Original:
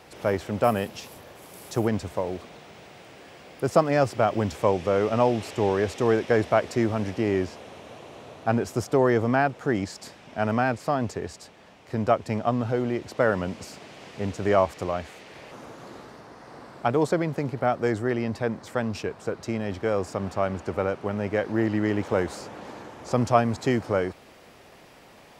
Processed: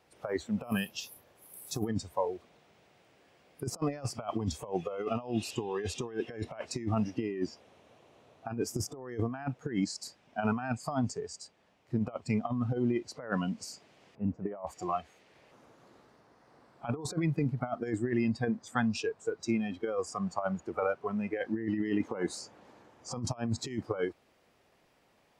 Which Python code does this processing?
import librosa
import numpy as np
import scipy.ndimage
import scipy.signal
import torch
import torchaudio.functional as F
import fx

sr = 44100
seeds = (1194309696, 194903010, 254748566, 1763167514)

y = fx.noise_reduce_blind(x, sr, reduce_db=18)
y = fx.lowpass(y, sr, hz=1000.0, slope=12, at=(14.15, 14.67))
y = fx.over_compress(y, sr, threshold_db=-28.0, ratio=-0.5)
y = y * librosa.db_to_amplitude(-3.0)